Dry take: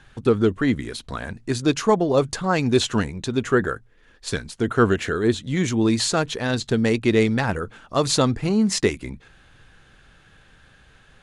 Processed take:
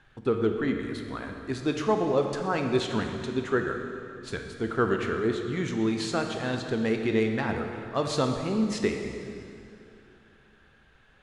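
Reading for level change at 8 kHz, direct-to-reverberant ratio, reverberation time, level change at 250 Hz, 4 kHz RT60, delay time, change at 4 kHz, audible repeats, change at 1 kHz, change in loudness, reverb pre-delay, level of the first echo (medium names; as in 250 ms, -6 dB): -13.5 dB, 4.0 dB, 2.7 s, -6.5 dB, 2.3 s, no echo, -9.5 dB, no echo, -5.5 dB, -6.5 dB, 15 ms, no echo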